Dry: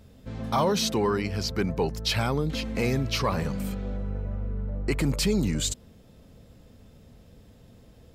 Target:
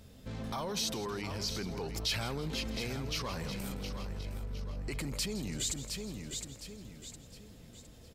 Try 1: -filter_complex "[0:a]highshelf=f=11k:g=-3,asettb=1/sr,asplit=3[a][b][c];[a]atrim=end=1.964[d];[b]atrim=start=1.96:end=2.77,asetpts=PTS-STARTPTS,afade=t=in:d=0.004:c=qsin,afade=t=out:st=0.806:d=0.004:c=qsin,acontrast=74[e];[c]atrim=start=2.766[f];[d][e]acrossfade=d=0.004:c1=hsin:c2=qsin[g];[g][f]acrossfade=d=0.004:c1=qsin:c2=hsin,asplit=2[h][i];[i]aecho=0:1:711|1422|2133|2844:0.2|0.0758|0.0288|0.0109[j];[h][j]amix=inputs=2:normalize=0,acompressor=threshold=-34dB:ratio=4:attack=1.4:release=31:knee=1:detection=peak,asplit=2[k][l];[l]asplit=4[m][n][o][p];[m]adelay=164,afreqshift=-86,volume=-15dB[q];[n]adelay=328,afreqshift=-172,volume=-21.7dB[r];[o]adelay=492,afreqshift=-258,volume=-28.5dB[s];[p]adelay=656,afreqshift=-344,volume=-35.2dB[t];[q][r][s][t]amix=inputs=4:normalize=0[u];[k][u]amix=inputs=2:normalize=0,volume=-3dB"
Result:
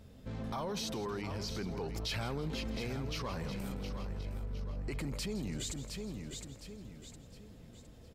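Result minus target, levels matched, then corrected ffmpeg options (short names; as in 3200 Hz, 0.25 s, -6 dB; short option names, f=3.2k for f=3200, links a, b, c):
4000 Hz band -3.5 dB
-filter_complex "[0:a]highshelf=f=11k:g=-3,asettb=1/sr,asplit=3[a][b][c];[a]atrim=end=1.964[d];[b]atrim=start=1.96:end=2.77,asetpts=PTS-STARTPTS,afade=t=in:d=0.004:c=qsin,afade=t=out:st=0.806:d=0.004:c=qsin,acontrast=74[e];[c]atrim=start=2.766[f];[d][e]acrossfade=d=0.004:c1=hsin:c2=qsin[g];[g][f]acrossfade=d=0.004:c1=qsin:c2=hsin,asplit=2[h][i];[i]aecho=0:1:711|1422|2133|2844:0.2|0.0758|0.0288|0.0109[j];[h][j]amix=inputs=2:normalize=0,acompressor=threshold=-34dB:ratio=4:attack=1.4:release=31:knee=1:detection=peak,highshelf=f=2.6k:g=8,asplit=2[k][l];[l]asplit=4[m][n][o][p];[m]adelay=164,afreqshift=-86,volume=-15dB[q];[n]adelay=328,afreqshift=-172,volume=-21.7dB[r];[o]adelay=492,afreqshift=-258,volume=-28.5dB[s];[p]adelay=656,afreqshift=-344,volume=-35.2dB[t];[q][r][s][t]amix=inputs=4:normalize=0[u];[k][u]amix=inputs=2:normalize=0,volume=-3dB"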